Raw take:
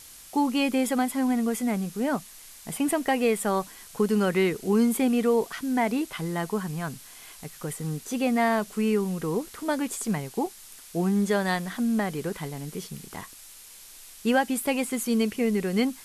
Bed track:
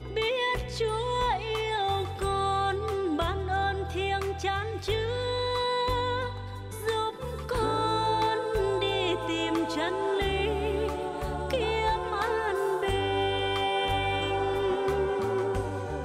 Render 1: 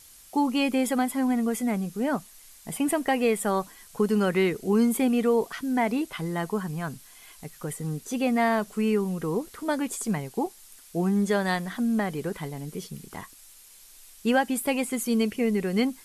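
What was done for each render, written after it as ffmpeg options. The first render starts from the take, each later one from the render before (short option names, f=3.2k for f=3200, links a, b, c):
-af "afftdn=nr=6:nf=-48"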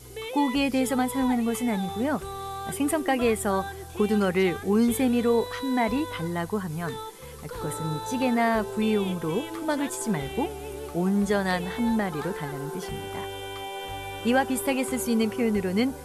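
-filter_complex "[1:a]volume=-8dB[a];[0:a][a]amix=inputs=2:normalize=0"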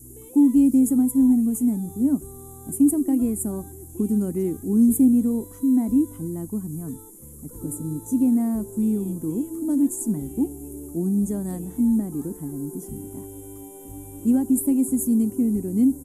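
-af "firequalizer=gain_entry='entry(180,0);entry(280,11);entry(440,-11);entry(1600,-26);entry(4300,-27);entry(6900,1);entry(10000,6)':delay=0.05:min_phase=1"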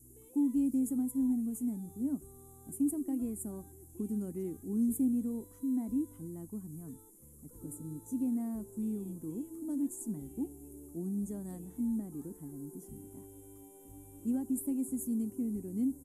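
-af "volume=-13.5dB"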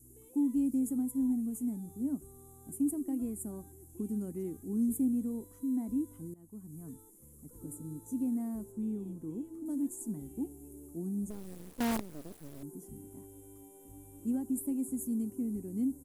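-filter_complex "[0:a]asettb=1/sr,asplit=3[a][b][c];[a]atrim=end=8.724[d];[b]atrim=start=8.72:end=9.66,asetpts=PTS-STARTPTS,afade=t=in:d=0.004:c=qsin,afade=t=out:st=0.936:d=0.004:c=qsin,highshelf=f=6k:g=-11.5[e];[c]atrim=start=9.656[f];[d][e]acrossfade=d=0.004:c1=hsin:c2=qsin[g];[g][f]acrossfade=d=0.004:c1=qsin:c2=hsin,asettb=1/sr,asplit=3[h][i][j];[h]atrim=end=11.304[k];[i]atrim=start=11.3:end=12.63,asetpts=PTS-STARTPTS,afade=t=in:d=0.004:c=qsin,afade=t=out:st=1.326:d=0.004:c=qsin,acrusher=bits=6:dc=4:mix=0:aa=0.000001[l];[j]atrim=start=12.626[m];[k][l]acrossfade=d=0.004:c1=hsin:c2=qsin[n];[n][m]acrossfade=d=0.004:c1=qsin:c2=hsin,asplit=2[o][p];[o]atrim=end=6.34,asetpts=PTS-STARTPTS,afade=t=out:st=6.336:d=0.004:c=hsin:silence=0.125893[q];[p]atrim=start=6.34,asetpts=PTS-STARTPTS,afade=t=in:d=0.51:silence=0.125893[r];[q][r]concat=n=2:v=0:a=1"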